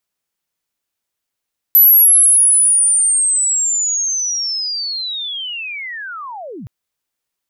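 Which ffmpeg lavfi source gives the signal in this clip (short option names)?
-f lavfi -i "aevalsrc='pow(10,(-4.5-23.5*t/4.92)/20)*sin(2*PI*(12000*t-11909*t*t/(2*4.92)))':d=4.92:s=44100"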